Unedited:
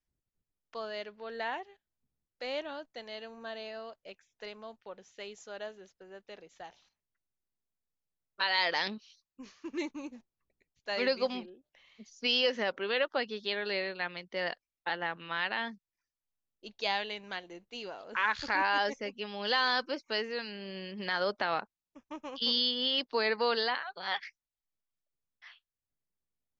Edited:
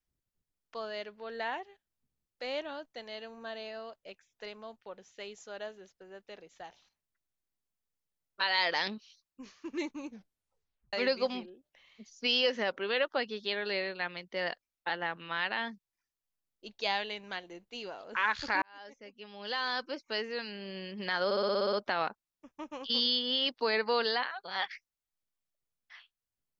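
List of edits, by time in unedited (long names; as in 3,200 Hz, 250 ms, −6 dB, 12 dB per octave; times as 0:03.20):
0:10.08: tape stop 0.85 s
0:18.62–0:20.47: fade in
0:21.25: stutter 0.06 s, 9 plays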